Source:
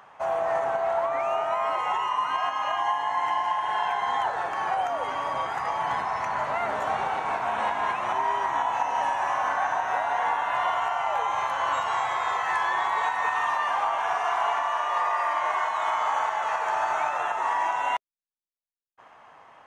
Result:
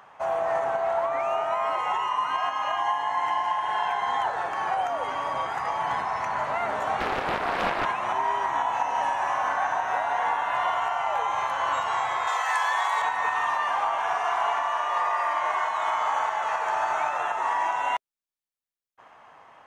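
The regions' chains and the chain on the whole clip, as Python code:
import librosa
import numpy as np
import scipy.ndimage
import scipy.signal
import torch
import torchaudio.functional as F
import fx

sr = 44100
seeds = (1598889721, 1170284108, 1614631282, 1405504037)

y = fx.chain(x, sr, fx.bass_treble(bass_db=-12, treble_db=1),
    fx.small_body(hz=(370.0, 1800.0, 3200.0), ring_ms=25, db=10),
    fx.doppler_dist(depth_ms=0.68), at=(7.0, 7.85))
y = fx.chain(y, sr, fx.highpass(hz=470.0, slope=24),
    fx.high_shelf(hz=4800.0, db=11.5), at=(12.27, 13.02))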